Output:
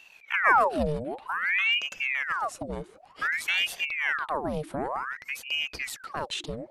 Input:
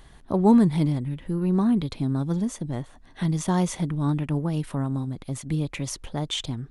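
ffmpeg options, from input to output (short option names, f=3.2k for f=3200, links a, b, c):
-af "aeval=exprs='val(0)*sin(2*PI*1500*n/s+1500*0.8/0.54*sin(2*PI*0.54*n/s))':c=same,volume=-1.5dB"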